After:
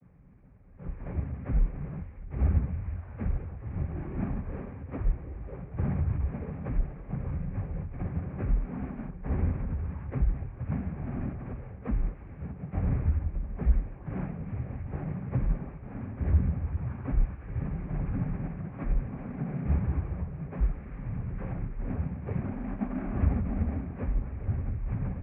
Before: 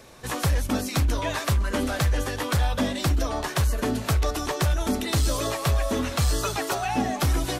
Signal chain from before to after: median filter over 41 samples; noise-vocoded speech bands 12; wide varispeed 0.301×

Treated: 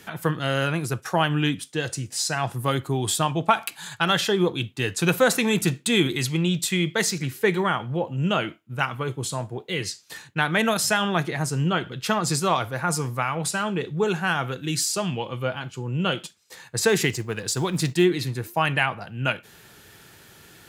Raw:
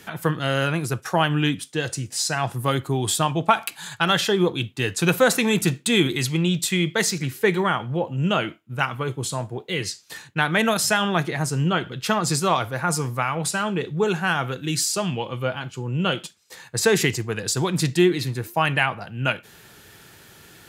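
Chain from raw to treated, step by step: 16.88–18.04 s: companding laws mixed up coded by A; trim -1.5 dB

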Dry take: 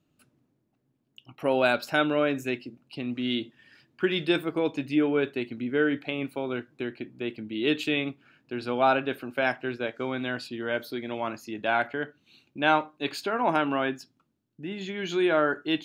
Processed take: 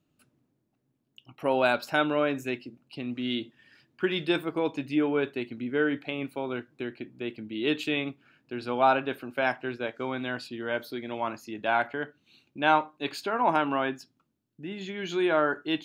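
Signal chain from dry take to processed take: dynamic bell 950 Hz, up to +5 dB, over -41 dBFS, Q 2.2; trim -2 dB

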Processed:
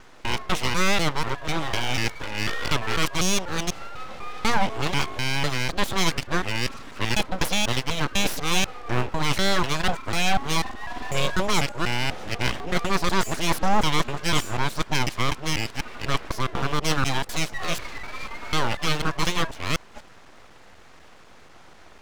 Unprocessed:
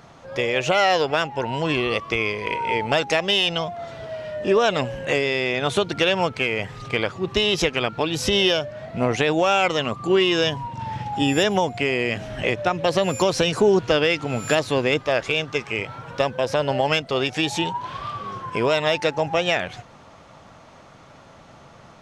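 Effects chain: time reversed locally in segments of 247 ms; full-wave rectifier

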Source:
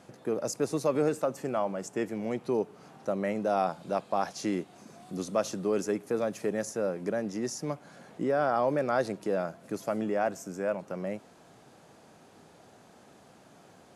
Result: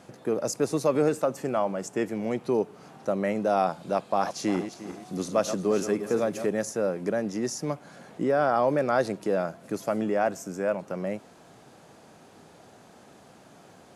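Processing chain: 4.04–6.46 s: backward echo that repeats 176 ms, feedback 51%, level -9.5 dB; trim +3.5 dB

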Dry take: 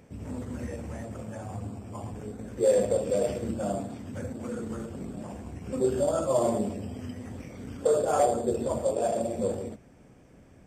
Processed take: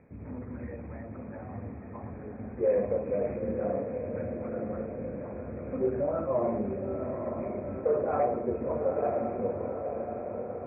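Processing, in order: Chebyshev low-pass 2.5 kHz, order 10; on a send: echo that smears into a reverb 943 ms, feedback 59%, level -5.5 dB; on the sum: trim -3 dB

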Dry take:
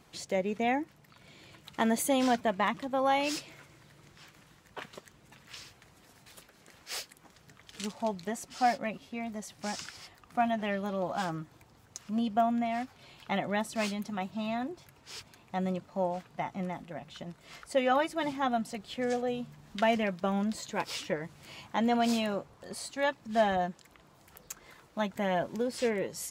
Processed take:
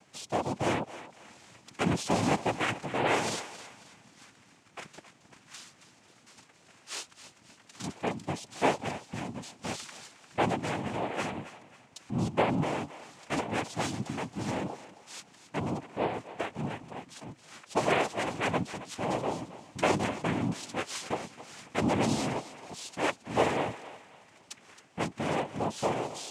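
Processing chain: noise-vocoded speech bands 4; on a send: thinning echo 270 ms, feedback 40%, high-pass 560 Hz, level -13 dB

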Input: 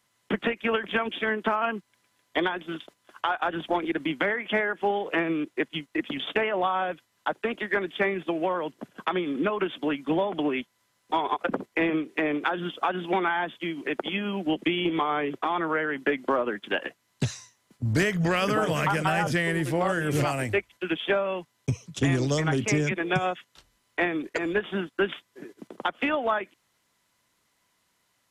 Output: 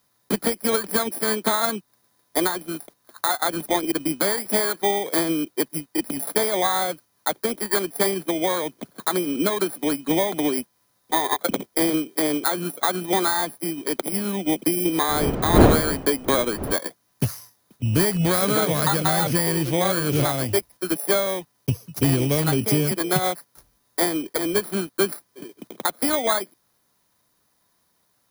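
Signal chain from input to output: bit-reversed sample order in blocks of 16 samples; 15.07–16.72 s: wind noise 410 Hz -26 dBFS; trim +4 dB

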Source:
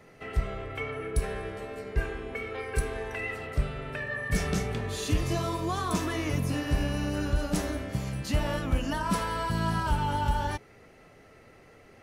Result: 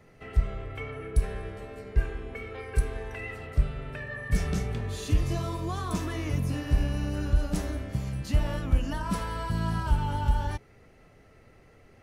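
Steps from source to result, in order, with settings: bass shelf 130 Hz +10.5 dB; trim -4.5 dB

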